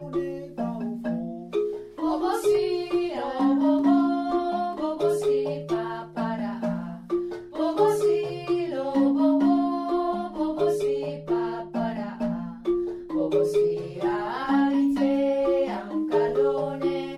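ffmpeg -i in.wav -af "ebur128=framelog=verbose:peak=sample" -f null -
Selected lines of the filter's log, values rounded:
Integrated loudness:
  I:         -25.5 LUFS
  Threshold: -35.5 LUFS
Loudness range:
  LRA:         3.5 LU
  Threshold: -45.4 LUFS
  LRA low:   -27.5 LUFS
  LRA high:  -24.0 LUFS
Sample peak:
  Peak:       -9.7 dBFS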